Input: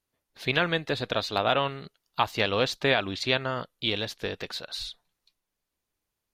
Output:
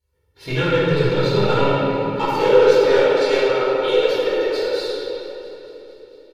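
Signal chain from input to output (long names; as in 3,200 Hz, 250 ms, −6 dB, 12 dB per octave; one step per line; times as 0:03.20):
loose part that buzzes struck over −32 dBFS, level −28 dBFS
low-shelf EQ 440 Hz +11 dB
comb filter 2.2 ms, depth 100%
in parallel at +1.5 dB: brickwall limiter −15 dBFS, peak gain reduction 11 dB
on the sum: high-pass filter sweep 68 Hz → 490 Hz, 0:00.12–0:02.80
harmonic generator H 7 −25 dB, 8 −39 dB, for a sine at 3.5 dBFS
soft clipping −10.5 dBFS, distortion −8 dB
flanger 0.42 Hz, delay 1.7 ms, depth 3.7 ms, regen +30%
on a send: delay with a high-pass on its return 225 ms, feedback 71%, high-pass 1,900 Hz, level −17 dB
on the sum: rectangular room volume 210 cubic metres, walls hard, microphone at 1.8 metres
level −6.5 dB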